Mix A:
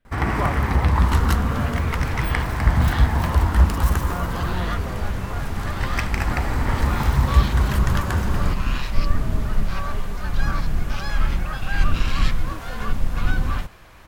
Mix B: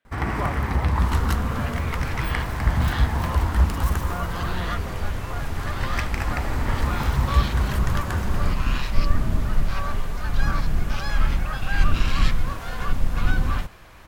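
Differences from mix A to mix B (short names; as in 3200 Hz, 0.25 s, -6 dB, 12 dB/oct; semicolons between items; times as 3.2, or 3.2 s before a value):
speech: add weighting filter A; first sound -3.5 dB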